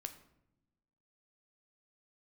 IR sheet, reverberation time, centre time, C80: non-exponential decay, 9 ms, 14.5 dB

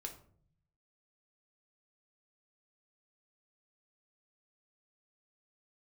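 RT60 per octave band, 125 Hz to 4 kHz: 1.1, 0.95, 0.65, 0.45, 0.40, 0.30 seconds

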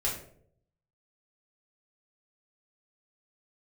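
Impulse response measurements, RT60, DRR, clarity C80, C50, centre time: 0.65 s, −5.0 dB, 9.5 dB, 6.0 dB, 32 ms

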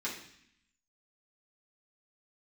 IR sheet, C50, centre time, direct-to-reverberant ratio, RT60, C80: 6.0 dB, 30 ms, −8.0 dB, 0.65 s, 9.0 dB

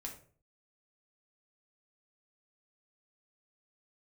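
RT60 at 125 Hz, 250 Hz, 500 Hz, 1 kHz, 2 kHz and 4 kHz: 0.55, 0.50, 0.50, 0.40, 0.35, 0.30 seconds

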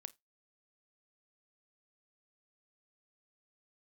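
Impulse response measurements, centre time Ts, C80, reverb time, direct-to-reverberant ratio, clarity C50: 2 ms, 33.5 dB, non-exponential decay, 15.0 dB, 25.0 dB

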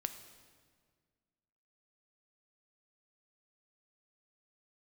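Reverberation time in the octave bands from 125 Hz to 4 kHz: 2.1, 2.1, 1.9, 1.6, 1.5, 1.4 seconds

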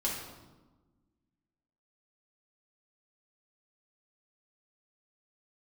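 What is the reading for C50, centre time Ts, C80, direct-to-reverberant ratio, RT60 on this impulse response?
2.5 dB, 56 ms, 5.0 dB, −5.5 dB, 1.2 s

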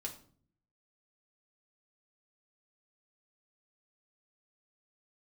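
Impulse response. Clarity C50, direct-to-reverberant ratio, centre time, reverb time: 11.0 dB, −0.5 dB, 13 ms, 0.50 s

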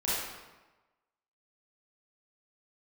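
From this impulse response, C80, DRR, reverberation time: 1.0 dB, −10.0 dB, 1.2 s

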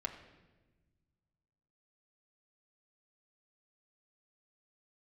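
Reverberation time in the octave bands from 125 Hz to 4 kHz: 2.5, 2.0, 1.4, 1.0, 1.1, 0.95 seconds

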